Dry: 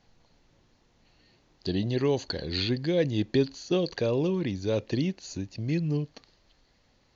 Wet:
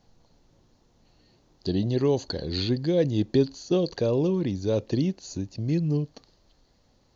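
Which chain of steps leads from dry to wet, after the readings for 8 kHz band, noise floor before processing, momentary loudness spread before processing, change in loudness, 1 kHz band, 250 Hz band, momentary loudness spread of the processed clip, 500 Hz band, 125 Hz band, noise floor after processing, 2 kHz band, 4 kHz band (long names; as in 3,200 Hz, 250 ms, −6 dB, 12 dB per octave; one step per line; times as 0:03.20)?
can't be measured, −66 dBFS, 7 LU, +2.5 dB, +1.0 dB, +3.0 dB, 7 LU, +2.5 dB, +3.0 dB, −64 dBFS, −4.5 dB, −1.0 dB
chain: parametric band 2,200 Hz −9 dB 1.5 octaves
level +3 dB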